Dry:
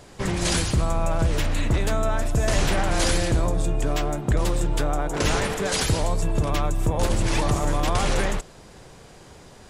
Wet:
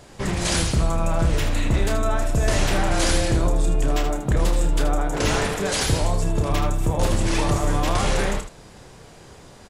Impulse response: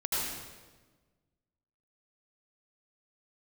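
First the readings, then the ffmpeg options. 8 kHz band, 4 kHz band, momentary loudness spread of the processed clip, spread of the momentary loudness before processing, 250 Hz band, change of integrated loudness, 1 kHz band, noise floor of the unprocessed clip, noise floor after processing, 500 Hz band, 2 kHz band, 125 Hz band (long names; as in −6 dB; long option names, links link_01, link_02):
+1.5 dB, +1.5 dB, 3 LU, 3 LU, +1.5 dB, +1.5 dB, +1.0 dB, −47 dBFS, −46 dBFS, +1.0 dB, +1.0 dB, +1.5 dB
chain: -af "aecho=1:1:30|78:0.447|0.376"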